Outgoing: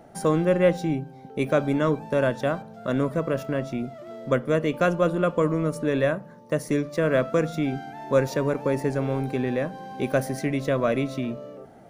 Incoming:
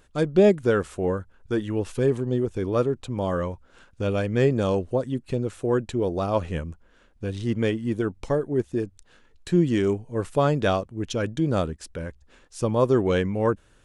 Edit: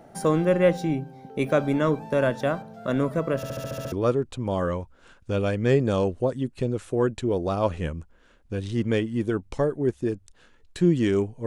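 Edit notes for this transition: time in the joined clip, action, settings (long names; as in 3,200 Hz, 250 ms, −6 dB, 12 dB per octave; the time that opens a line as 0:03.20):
outgoing
0:03.36: stutter in place 0.07 s, 8 plays
0:03.92: continue with incoming from 0:02.63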